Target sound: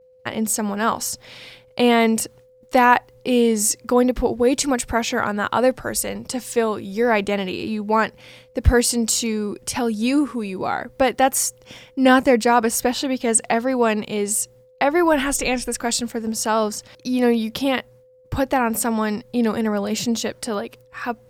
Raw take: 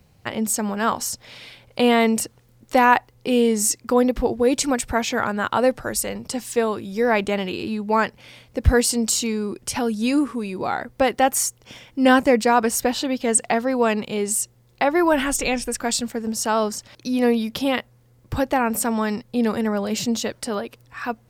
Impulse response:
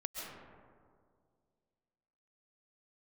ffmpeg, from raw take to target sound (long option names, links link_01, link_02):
-af "agate=range=-33dB:threshold=-43dB:ratio=3:detection=peak,aeval=exprs='val(0)+0.00282*sin(2*PI*510*n/s)':channel_layout=same,volume=1dB"